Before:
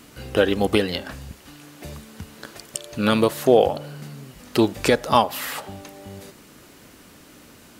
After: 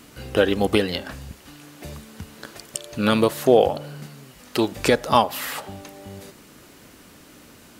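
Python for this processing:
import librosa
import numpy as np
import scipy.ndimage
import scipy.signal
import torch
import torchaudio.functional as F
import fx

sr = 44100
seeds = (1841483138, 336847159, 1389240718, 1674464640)

y = fx.low_shelf(x, sr, hz=360.0, db=-6.5, at=(4.06, 4.72))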